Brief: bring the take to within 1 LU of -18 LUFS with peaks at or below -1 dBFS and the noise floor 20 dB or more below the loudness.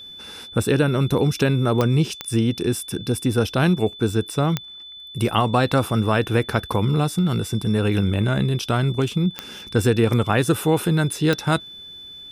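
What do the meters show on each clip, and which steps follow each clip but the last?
clicks found 5; steady tone 3.5 kHz; tone level -37 dBFS; loudness -21.0 LUFS; peak level -5.0 dBFS; loudness target -18.0 LUFS
-> de-click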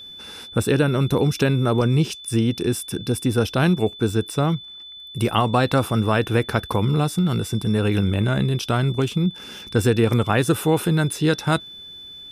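clicks found 0; steady tone 3.5 kHz; tone level -37 dBFS
-> band-stop 3.5 kHz, Q 30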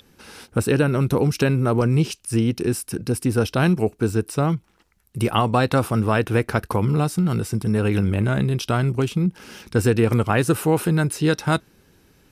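steady tone not found; loudness -21.5 LUFS; peak level -5.5 dBFS; loudness target -18.0 LUFS
-> trim +3.5 dB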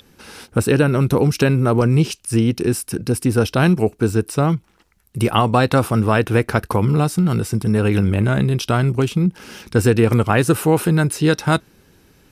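loudness -18.0 LUFS; peak level -2.0 dBFS; noise floor -57 dBFS

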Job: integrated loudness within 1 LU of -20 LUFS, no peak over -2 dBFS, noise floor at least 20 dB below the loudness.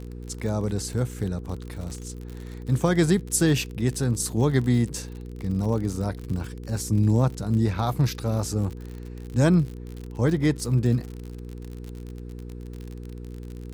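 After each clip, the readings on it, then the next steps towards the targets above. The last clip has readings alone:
tick rate 54 per s; hum 60 Hz; highest harmonic 480 Hz; hum level -36 dBFS; loudness -25.0 LUFS; peak level -8.0 dBFS; loudness target -20.0 LUFS
-> de-click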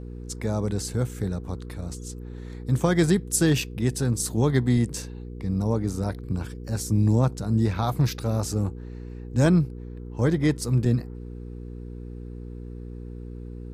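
tick rate 0.073 per s; hum 60 Hz; highest harmonic 480 Hz; hum level -36 dBFS
-> de-hum 60 Hz, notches 8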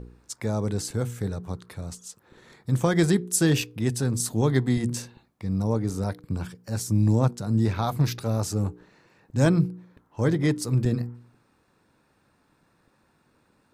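hum not found; loudness -25.5 LUFS; peak level -8.0 dBFS; loudness target -20.0 LUFS
-> trim +5.5 dB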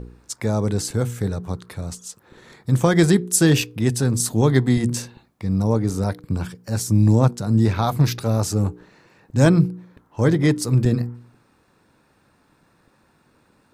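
loudness -20.0 LUFS; peak level -2.5 dBFS; noise floor -61 dBFS

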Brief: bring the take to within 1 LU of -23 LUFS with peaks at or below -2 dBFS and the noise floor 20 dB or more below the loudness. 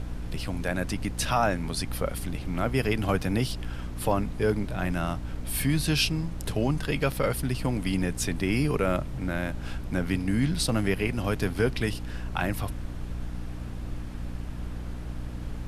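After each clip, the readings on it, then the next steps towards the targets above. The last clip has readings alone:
hum 60 Hz; highest harmonic 300 Hz; hum level -34 dBFS; noise floor -36 dBFS; noise floor target -49 dBFS; loudness -29.0 LUFS; peak level -11.0 dBFS; loudness target -23.0 LUFS
-> hum notches 60/120/180/240/300 Hz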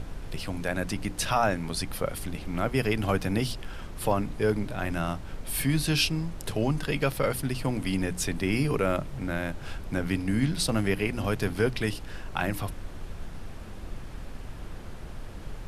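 hum not found; noise floor -40 dBFS; noise floor target -49 dBFS
-> noise print and reduce 9 dB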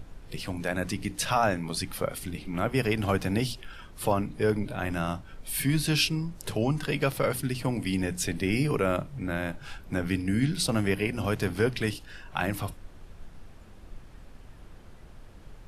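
noise floor -49 dBFS; loudness -29.0 LUFS; peak level -11.5 dBFS; loudness target -23.0 LUFS
-> trim +6 dB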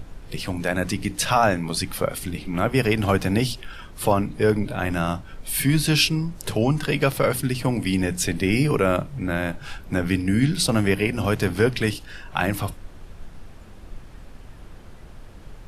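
loudness -23.0 LUFS; peak level -5.5 dBFS; noise floor -43 dBFS

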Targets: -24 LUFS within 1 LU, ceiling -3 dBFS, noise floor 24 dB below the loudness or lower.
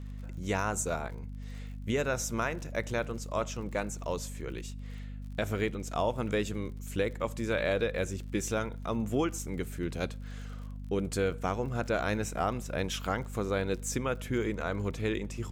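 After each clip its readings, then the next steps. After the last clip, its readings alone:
tick rate 52 per s; hum 50 Hz; highest harmonic 250 Hz; hum level -38 dBFS; loudness -33.0 LUFS; peak level -17.0 dBFS; loudness target -24.0 LUFS
-> de-click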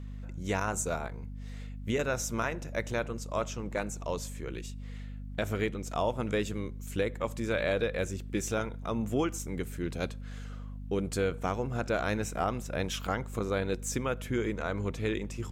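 tick rate 0.064 per s; hum 50 Hz; highest harmonic 250 Hz; hum level -38 dBFS
-> de-hum 50 Hz, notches 5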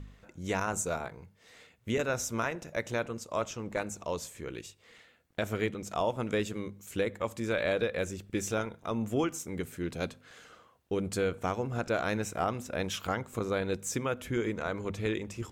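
hum not found; loudness -33.5 LUFS; peak level -16.5 dBFS; loudness target -24.0 LUFS
-> trim +9.5 dB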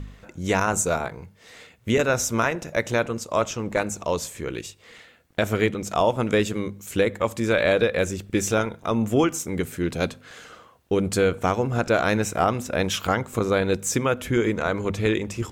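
loudness -24.0 LUFS; peak level -7.0 dBFS; noise floor -54 dBFS

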